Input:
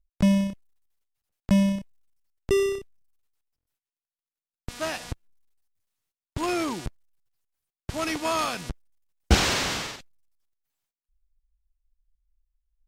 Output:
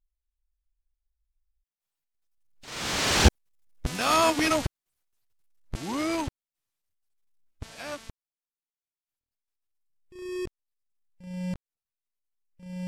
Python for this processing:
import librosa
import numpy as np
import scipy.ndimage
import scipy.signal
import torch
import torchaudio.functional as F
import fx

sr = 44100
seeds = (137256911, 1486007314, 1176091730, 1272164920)

y = np.flip(x).copy()
y = fx.doppler_pass(y, sr, speed_mps=29, closest_m=27.0, pass_at_s=4.31)
y = F.gain(torch.from_numpy(y), 4.5).numpy()